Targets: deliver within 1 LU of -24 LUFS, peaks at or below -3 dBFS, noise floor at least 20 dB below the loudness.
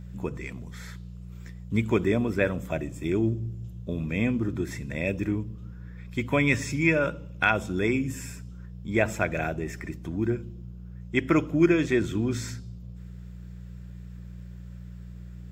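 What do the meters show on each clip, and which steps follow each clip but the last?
hum 60 Hz; harmonics up to 180 Hz; hum level -38 dBFS; loudness -27.5 LUFS; peak -7.0 dBFS; loudness target -24.0 LUFS
-> de-hum 60 Hz, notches 3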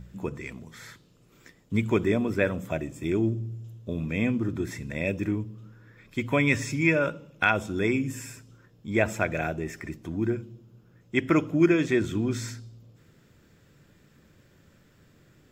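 hum none; loudness -27.5 LUFS; peak -7.0 dBFS; loudness target -24.0 LUFS
-> gain +3.5 dB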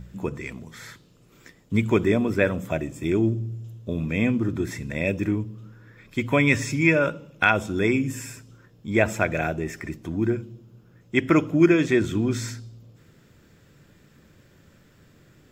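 loudness -24.0 LUFS; peak -3.5 dBFS; noise floor -56 dBFS

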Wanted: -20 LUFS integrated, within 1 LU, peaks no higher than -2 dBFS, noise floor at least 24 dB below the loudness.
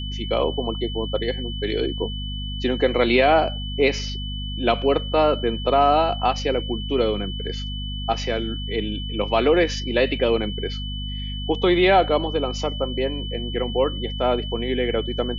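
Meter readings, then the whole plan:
hum 50 Hz; harmonics up to 250 Hz; hum level -27 dBFS; steady tone 3000 Hz; tone level -33 dBFS; loudness -22.5 LUFS; peak -6.5 dBFS; loudness target -20.0 LUFS
-> notches 50/100/150/200/250 Hz; notch 3000 Hz, Q 30; gain +2.5 dB

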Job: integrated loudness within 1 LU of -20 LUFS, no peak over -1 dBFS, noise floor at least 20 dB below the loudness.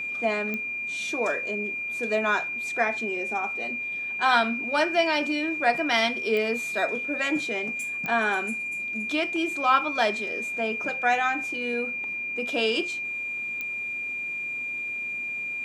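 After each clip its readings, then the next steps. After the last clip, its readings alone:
clicks 4; steady tone 2400 Hz; tone level -29 dBFS; loudness -26.0 LUFS; peak -8.0 dBFS; loudness target -20.0 LUFS
-> de-click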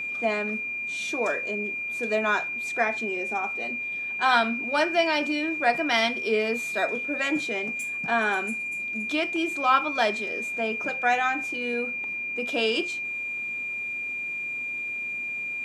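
clicks 0; steady tone 2400 Hz; tone level -29 dBFS
-> notch 2400 Hz, Q 30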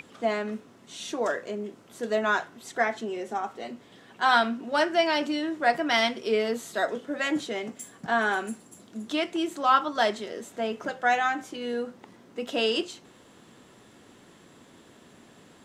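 steady tone none; loudness -27.5 LUFS; peak -7.5 dBFS; loudness target -20.0 LUFS
-> gain +7.5 dB; limiter -1 dBFS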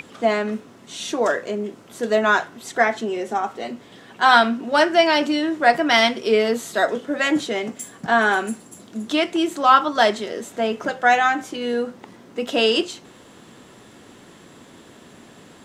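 loudness -20.0 LUFS; peak -1.0 dBFS; noise floor -47 dBFS

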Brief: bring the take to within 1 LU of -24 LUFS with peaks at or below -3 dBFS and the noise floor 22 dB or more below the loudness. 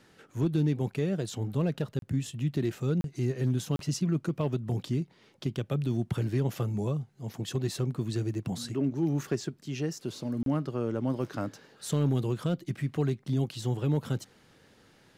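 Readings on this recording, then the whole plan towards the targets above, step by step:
clipped 0.3%; flat tops at -19.5 dBFS; dropouts 4; longest dropout 32 ms; loudness -31.5 LUFS; peak -19.5 dBFS; loudness target -24.0 LUFS
-> clip repair -19.5 dBFS; interpolate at 1.99/3.01/3.76/10.43, 32 ms; gain +7.5 dB

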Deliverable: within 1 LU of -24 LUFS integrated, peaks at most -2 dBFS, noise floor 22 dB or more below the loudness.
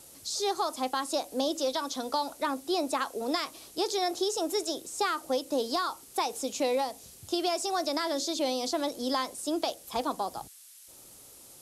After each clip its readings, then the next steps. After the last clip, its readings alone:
noise floor -52 dBFS; noise floor target -53 dBFS; loudness -31.0 LUFS; peak -15.5 dBFS; loudness target -24.0 LUFS
-> denoiser 6 dB, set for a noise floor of -52 dBFS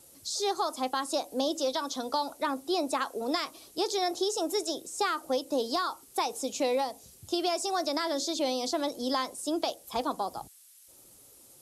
noise floor -56 dBFS; loudness -31.0 LUFS; peak -15.5 dBFS; loudness target -24.0 LUFS
-> gain +7 dB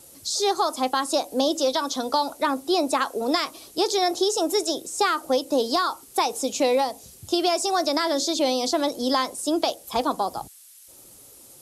loudness -24.0 LUFS; peak -8.5 dBFS; noise floor -49 dBFS

